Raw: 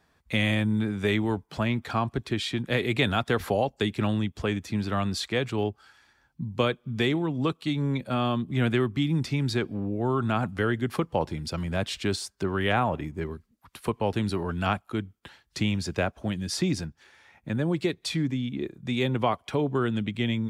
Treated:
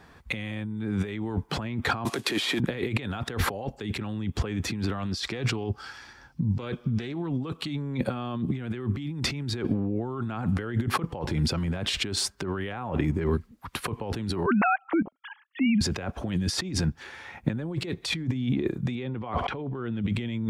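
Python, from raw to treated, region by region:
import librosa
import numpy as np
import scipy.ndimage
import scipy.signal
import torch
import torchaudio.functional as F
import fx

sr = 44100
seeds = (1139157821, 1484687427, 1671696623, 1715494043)

y = fx.chain(x, sr, fx.cvsd(bps=64000),
    fx.highpass(hz=330.0, slope=12),
    fx.band_squash(depth_pct=70), at=(2.05, 2.6))
y = fx.chain(y, sr, fx.peak_eq(hz=5300.0, db=9.0, octaves=0.43),
    fx.doppler_dist(depth_ms=0.13), at=(4.98, 7.29))
y = fx.chain(y, sr, fx.sine_speech(),
    fx.level_steps(step_db=18), at=(14.46, 15.81))
y = fx.chain(y, sr, fx.lowpass(hz=3700.0, slope=12),
    fx.pre_swell(db_per_s=34.0), at=(18.95, 20.02))
y = fx.over_compress(y, sr, threshold_db=-36.0, ratio=-1.0)
y = fx.high_shelf(y, sr, hz=3500.0, db=-7.5)
y = fx.notch(y, sr, hz=630.0, q=12.0)
y = F.gain(torch.from_numpy(y), 7.0).numpy()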